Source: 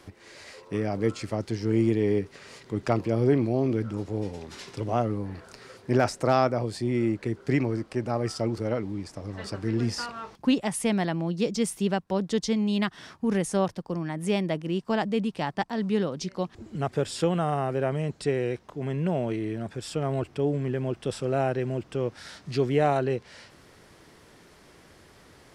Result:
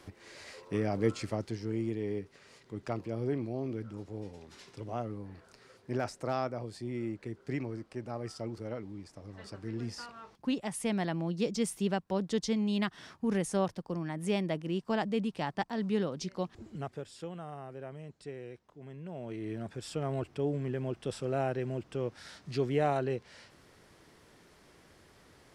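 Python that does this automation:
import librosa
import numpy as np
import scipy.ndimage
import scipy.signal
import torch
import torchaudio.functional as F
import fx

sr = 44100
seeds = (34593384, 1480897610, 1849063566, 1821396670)

y = fx.gain(x, sr, db=fx.line((1.24, -3.0), (1.79, -11.0), (10.23, -11.0), (11.15, -5.0), (16.66, -5.0), (17.07, -17.0), (19.08, -17.0), (19.52, -6.0)))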